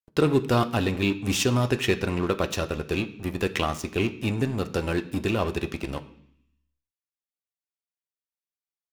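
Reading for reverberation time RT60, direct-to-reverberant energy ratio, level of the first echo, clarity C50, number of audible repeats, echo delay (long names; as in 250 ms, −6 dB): 0.65 s, 6.5 dB, no echo audible, 15.0 dB, no echo audible, no echo audible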